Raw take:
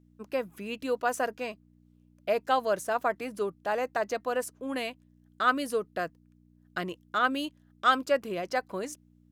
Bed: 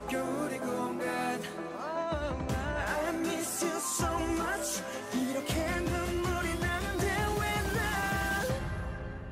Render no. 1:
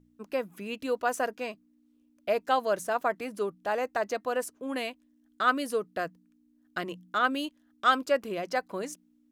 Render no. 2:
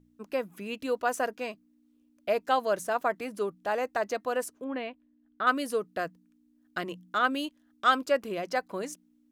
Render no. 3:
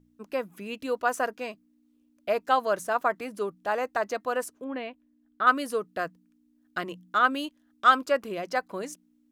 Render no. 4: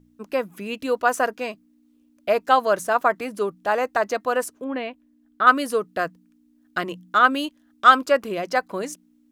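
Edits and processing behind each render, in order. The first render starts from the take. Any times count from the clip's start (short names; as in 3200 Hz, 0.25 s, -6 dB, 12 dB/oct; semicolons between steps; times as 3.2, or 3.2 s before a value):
de-hum 60 Hz, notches 3
4.64–5.47 air absorption 380 m
dynamic EQ 1200 Hz, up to +5 dB, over -38 dBFS, Q 1.5
gain +6 dB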